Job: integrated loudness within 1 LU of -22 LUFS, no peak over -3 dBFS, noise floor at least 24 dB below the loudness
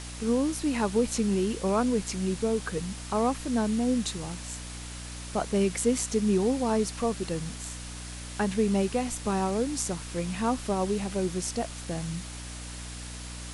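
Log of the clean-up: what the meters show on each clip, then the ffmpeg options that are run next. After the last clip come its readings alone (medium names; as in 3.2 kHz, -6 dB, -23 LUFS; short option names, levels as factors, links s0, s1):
hum 60 Hz; highest harmonic 300 Hz; hum level -39 dBFS; noise floor -40 dBFS; noise floor target -53 dBFS; loudness -29.0 LUFS; peak level -13.0 dBFS; loudness target -22.0 LUFS
-> -af "bandreject=f=60:t=h:w=4,bandreject=f=120:t=h:w=4,bandreject=f=180:t=h:w=4,bandreject=f=240:t=h:w=4,bandreject=f=300:t=h:w=4"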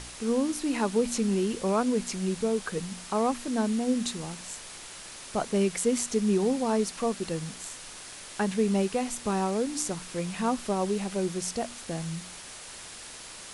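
hum not found; noise floor -44 dBFS; noise floor target -53 dBFS
-> -af "afftdn=nr=9:nf=-44"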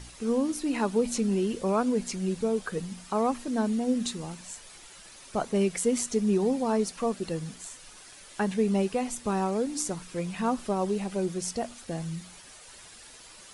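noise floor -50 dBFS; noise floor target -53 dBFS
-> -af "afftdn=nr=6:nf=-50"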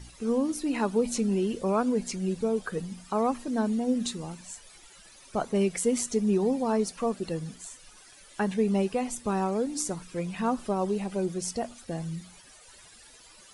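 noise floor -53 dBFS; loudness -29.0 LUFS; peak level -14.0 dBFS; loudness target -22.0 LUFS
-> -af "volume=2.24"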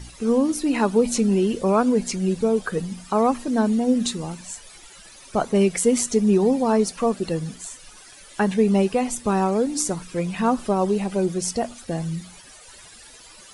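loudness -22.0 LUFS; peak level -7.0 dBFS; noise floor -46 dBFS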